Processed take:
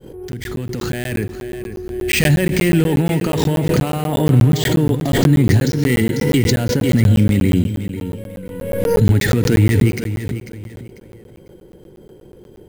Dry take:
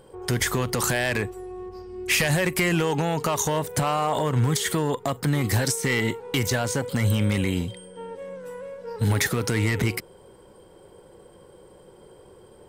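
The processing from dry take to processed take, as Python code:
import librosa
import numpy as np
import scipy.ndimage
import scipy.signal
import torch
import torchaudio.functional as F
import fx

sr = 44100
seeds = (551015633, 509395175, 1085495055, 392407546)

p1 = fx.fade_in_head(x, sr, length_s=1.69)
p2 = fx.peak_eq(p1, sr, hz=1100.0, db=-10.5, octaves=0.51)
p3 = np.repeat(scipy.signal.resample_poly(p2, 1, 4), 4)[:len(p2)]
p4 = fx.low_shelf_res(p3, sr, hz=430.0, db=7.0, q=1.5)
p5 = p4 + fx.echo_feedback(p4, sr, ms=495, feedback_pct=30, wet_db=-11, dry=0)
p6 = fx.rev_schroeder(p5, sr, rt60_s=1.7, comb_ms=33, drr_db=15.5)
p7 = fx.buffer_crackle(p6, sr, first_s=0.32, period_s=0.12, block=512, kind='zero')
p8 = fx.pre_swell(p7, sr, db_per_s=38.0)
y = F.gain(torch.from_numpy(p8), 2.0).numpy()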